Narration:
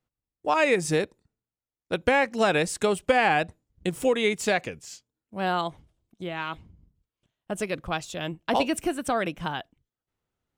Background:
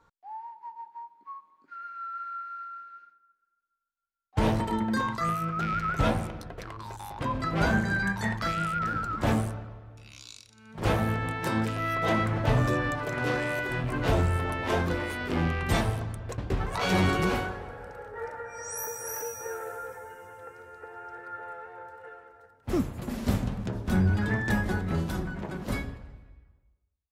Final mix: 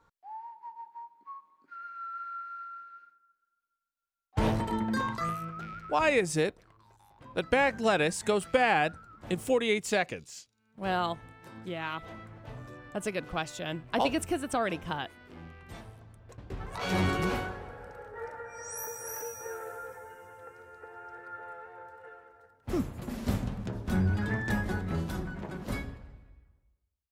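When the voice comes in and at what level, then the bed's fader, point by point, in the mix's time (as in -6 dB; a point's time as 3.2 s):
5.45 s, -3.5 dB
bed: 5.18 s -2.5 dB
6.11 s -20.5 dB
15.94 s -20.5 dB
17 s -3.5 dB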